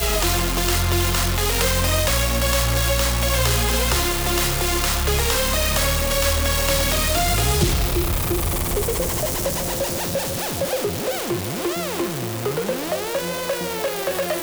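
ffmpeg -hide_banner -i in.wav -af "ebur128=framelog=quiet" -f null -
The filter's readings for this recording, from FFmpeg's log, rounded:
Integrated loudness:
  I:         -20.5 LUFS
  Threshold: -30.5 LUFS
Loudness range:
  LRA:         5.1 LU
  Threshold: -40.4 LUFS
  LRA low:   -24.1 LUFS
  LRA high:  -19.0 LUFS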